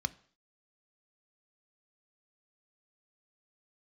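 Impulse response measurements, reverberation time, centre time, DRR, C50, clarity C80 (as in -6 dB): 0.50 s, 2 ms, 12.0 dB, 21.0 dB, 24.5 dB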